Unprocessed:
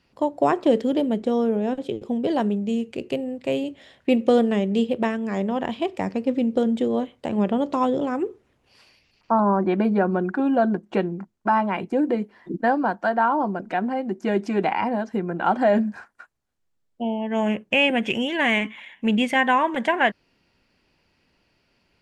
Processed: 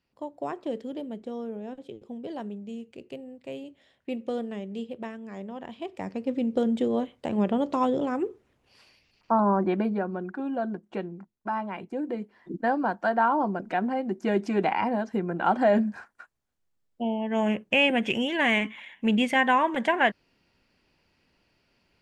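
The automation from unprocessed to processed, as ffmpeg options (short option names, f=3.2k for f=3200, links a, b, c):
-af "volume=4.5dB,afade=t=in:st=5.68:d=1.06:silence=0.298538,afade=t=out:st=9.63:d=0.44:silence=0.446684,afade=t=in:st=12.01:d=1.15:silence=0.421697"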